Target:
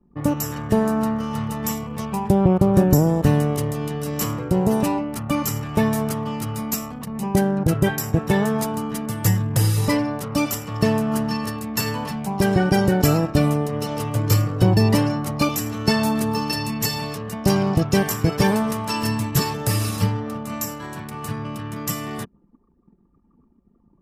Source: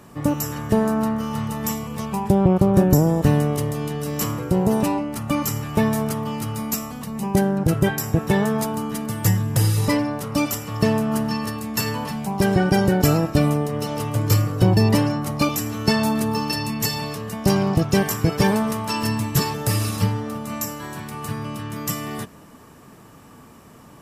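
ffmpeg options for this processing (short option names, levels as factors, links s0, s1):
-af "anlmdn=2.51"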